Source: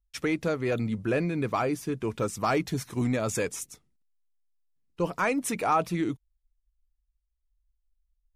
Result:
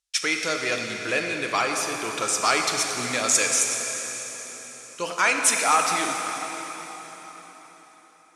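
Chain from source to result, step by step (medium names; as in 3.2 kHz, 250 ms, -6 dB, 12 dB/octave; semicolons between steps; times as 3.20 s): frequency weighting ITU-R 468; plate-style reverb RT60 4.6 s, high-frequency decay 0.9×, DRR 2 dB; trim +3.5 dB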